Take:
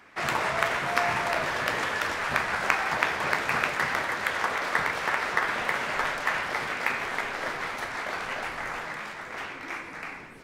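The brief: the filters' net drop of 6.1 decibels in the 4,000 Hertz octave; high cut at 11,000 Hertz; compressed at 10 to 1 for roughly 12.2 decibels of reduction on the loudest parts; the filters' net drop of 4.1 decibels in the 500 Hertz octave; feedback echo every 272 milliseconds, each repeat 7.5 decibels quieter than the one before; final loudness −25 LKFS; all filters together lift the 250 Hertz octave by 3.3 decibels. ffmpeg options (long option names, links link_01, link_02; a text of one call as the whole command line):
ffmpeg -i in.wav -af "lowpass=11000,equalizer=frequency=250:width_type=o:gain=6.5,equalizer=frequency=500:width_type=o:gain=-7,equalizer=frequency=4000:width_type=o:gain=-8.5,acompressor=threshold=-35dB:ratio=10,aecho=1:1:272|544|816|1088|1360:0.422|0.177|0.0744|0.0312|0.0131,volume=12.5dB" out.wav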